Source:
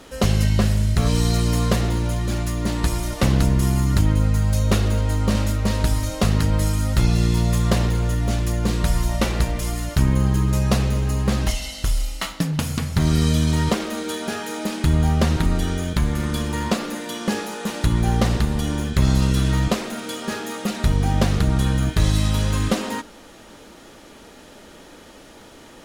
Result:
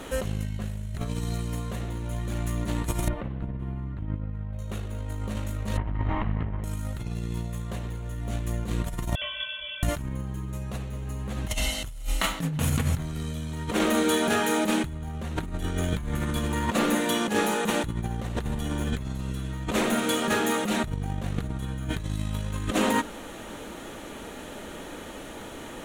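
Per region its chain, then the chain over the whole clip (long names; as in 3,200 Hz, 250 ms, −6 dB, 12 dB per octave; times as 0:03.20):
0:03.08–0:04.59: high-frequency loss of the air 490 metres + expander for the loud parts, over −27 dBFS
0:05.77–0:06.64: lower of the sound and its delayed copy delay 1 ms + low-pass filter 2,400 Hz 24 dB per octave + saturating transformer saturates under 150 Hz
0:09.15–0:09.83: stiff-string resonator 340 Hz, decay 0.24 s, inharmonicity 0.008 + voice inversion scrambler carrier 3,400 Hz
whole clip: parametric band 5,000 Hz −12.5 dB 0.38 octaves; brickwall limiter −15 dBFS; compressor whose output falls as the input rises −27 dBFS, ratio −0.5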